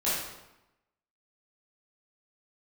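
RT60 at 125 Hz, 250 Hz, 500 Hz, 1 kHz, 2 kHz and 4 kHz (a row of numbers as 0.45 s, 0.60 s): 0.95 s, 1.0 s, 0.90 s, 0.95 s, 0.85 s, 0.70 s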